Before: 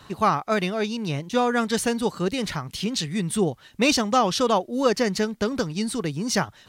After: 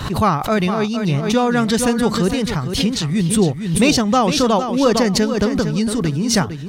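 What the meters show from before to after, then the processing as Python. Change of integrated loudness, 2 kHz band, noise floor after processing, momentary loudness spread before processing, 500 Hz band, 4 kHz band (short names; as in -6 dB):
+7.0 dB, +4.0 dB, -26 dBFS, 6 LU, +5.5 dB, +6.0 dB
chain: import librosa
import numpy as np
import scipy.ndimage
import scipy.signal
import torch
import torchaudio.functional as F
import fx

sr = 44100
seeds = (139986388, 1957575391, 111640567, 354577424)

y = fx.low_shelf(x, sr, hz=190.0, db=11.0)
y = fx.echo_feedback(y, sr, ms=457, feedback_pct=21, wet_db=-9.0)
y = fx.pre_swell(y, sr, db_per_s=64.0)
y = F.gain(torch.from_numpy(y), 3.0).numpy()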